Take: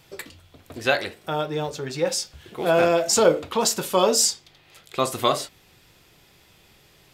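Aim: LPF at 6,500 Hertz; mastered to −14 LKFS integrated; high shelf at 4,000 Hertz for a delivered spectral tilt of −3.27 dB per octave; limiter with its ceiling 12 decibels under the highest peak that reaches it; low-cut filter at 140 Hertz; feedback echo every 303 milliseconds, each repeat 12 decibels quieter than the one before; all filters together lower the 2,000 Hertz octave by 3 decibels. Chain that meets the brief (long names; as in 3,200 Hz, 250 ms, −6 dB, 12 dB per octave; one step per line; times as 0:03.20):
high-pass filter 140 Hz
low-pass filter 6,500 Hz
parametric band 2,000 Hz −3 dB
high-shelf EQ 4,000 Hz −6 dB
brickwall limiter −17 dBFS
repeating echo 303 ms, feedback 25%, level −12 dB
level +15 dB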